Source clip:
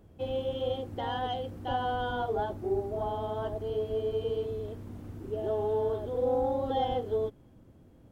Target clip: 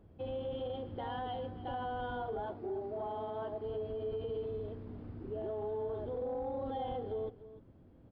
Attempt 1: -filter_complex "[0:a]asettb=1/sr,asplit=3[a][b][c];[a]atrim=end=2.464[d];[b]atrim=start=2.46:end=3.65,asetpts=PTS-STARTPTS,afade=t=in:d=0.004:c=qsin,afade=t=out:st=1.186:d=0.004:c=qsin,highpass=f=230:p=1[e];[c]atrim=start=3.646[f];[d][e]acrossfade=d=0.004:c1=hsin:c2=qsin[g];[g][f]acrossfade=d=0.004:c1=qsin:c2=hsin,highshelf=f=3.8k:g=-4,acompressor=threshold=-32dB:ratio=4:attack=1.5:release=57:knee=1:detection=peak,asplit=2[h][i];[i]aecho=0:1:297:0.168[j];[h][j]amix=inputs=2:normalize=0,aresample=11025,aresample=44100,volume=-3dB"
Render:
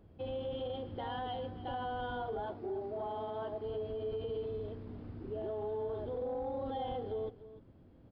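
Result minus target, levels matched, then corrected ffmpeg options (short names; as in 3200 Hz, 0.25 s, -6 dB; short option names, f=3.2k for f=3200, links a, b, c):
4000 Hz band +3.0 dB
-filter_complex "[0:a]asettb=1/sr,asplit=3[a][b][c];[a]atrim=end=2.464[d];[b]atrim=start=2.46:end=3.65,asetpts=PTS-STARTPTS,afade=t=in:d=0.004:c=qsin,afade=t=out:st=1.186:d=0.004:c=qsin,highpass=f=230:p=1[e];[c]atrim=start=3.646[f];[d][e]acrossfade=d=0.004:c1=hsin:c2=qsin[g];[g][f]acrossfade=d=0.004:c1=qsin:c2=hsin,highshelf=f=3.8k:g=-12,acompressor=threshold=-32dB:ratio=4:attack=1.5:release=57:knee=1:detection=peak,asplit=2[h][i];[i]aecho=0:1:297:0.168[j];[h][j]amix=inputs=2:normalize=0,aresample=11025,aresample=44100,volume=-3dB"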